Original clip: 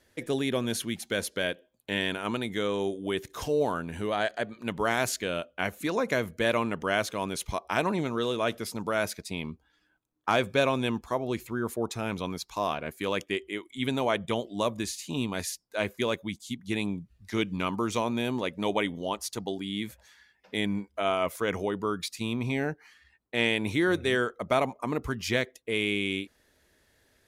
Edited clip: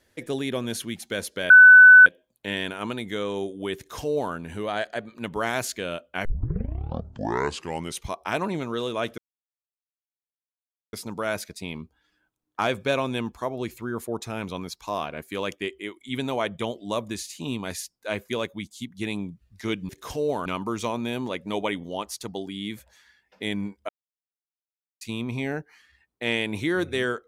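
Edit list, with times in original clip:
1.5 add tone 1500 Hz -6 dBFS 0.56 s
3.21–3.78 copy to 17.58
5.69 tape start 1.80 s
8.62 insert silence 1.75 s
21.01–22.13 mute

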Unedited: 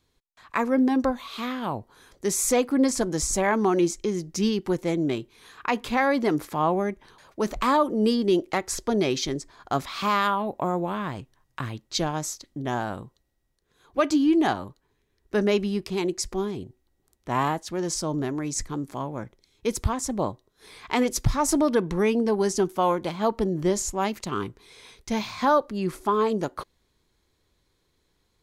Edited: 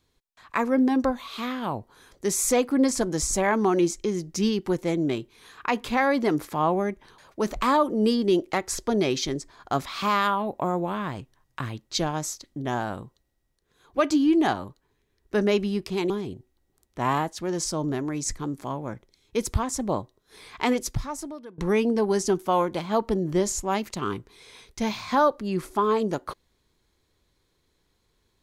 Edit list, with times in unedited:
16.1–16.4 cut
20.98–21.88 fade out quadratic, to -22 dB

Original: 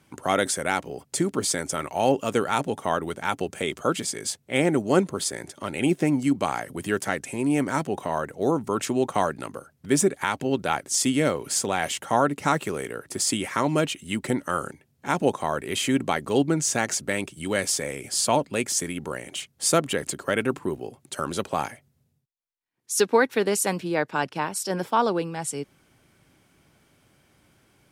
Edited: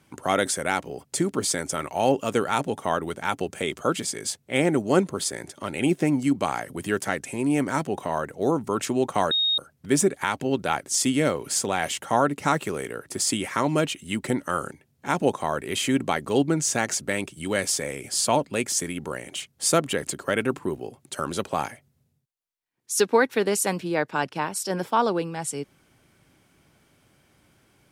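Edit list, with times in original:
9.31–9.58 bleep 3730 Hz -19.5 dBFS

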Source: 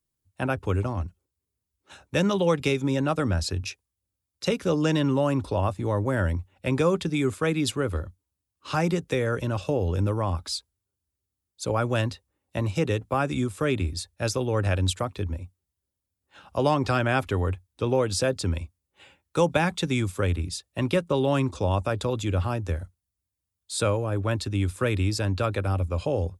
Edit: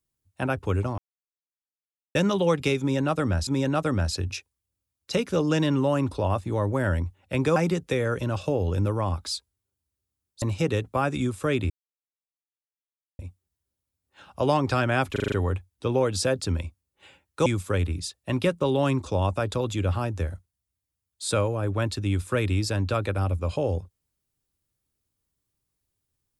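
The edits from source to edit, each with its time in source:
0.98–2.15 mute
2.8–3.47 loop, 2 plays
6.89–8.77 cut
11.63–12.59 cut
13.87–15.36 mute
17.29 stutter 0.04 s, 6 plays
19.43–19.95 cut

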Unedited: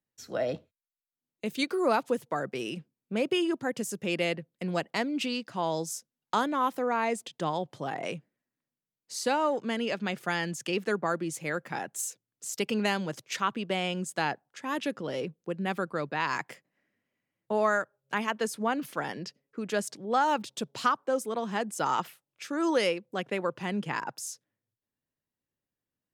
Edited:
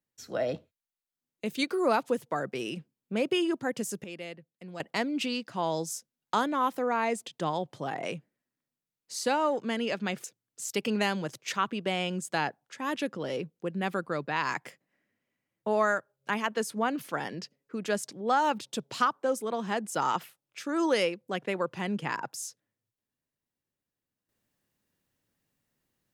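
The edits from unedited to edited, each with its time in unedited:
4.04–4.8 gain -12 dB
10.24–12.08 cut

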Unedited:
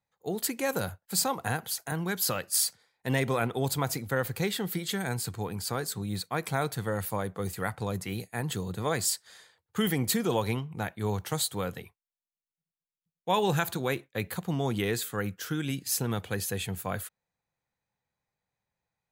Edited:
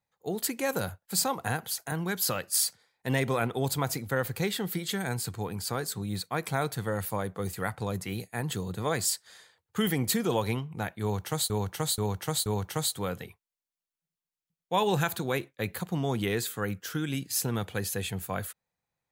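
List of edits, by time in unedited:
11.02–11.5 loop, 4 plays

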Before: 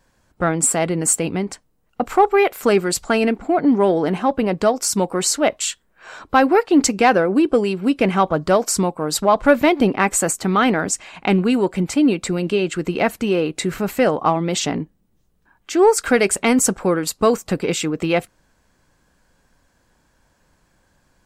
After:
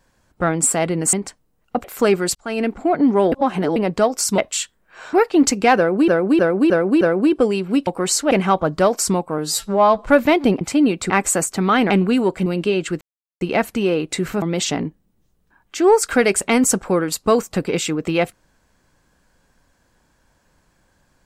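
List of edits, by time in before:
1.13–1.38 cut
2.09–2.48 cut
2.99–3.37 fade in
3.96–4.4 reverse
5.02–5.46 move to 8
6.21–6.5 cut
7.14–7.45 loop, 5 plays
9.07–9.4 stretch 2×
10.77–11.27 cut
11.83–12.32 move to 9.97
12.87 insert silence 0.40 s
13.88–14.37 cut

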